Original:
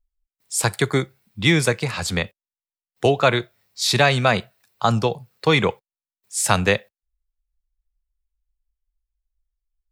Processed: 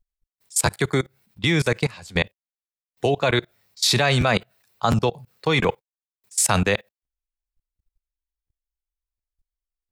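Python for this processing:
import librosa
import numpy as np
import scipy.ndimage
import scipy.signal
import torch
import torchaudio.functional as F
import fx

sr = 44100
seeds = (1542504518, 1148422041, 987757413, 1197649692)

y = fx.notch(x, sr, hz=1300.0, q=6.1, at=(1.93, 3.31))
y = fx.level_steps(y, sr, step_db=23)
y = fx.buffer_crackle(y, sr, first_s=0.65, period_s=0.71, block=512, kind='repeat')
y = y * 10.0 ** (4.5 / 20.0)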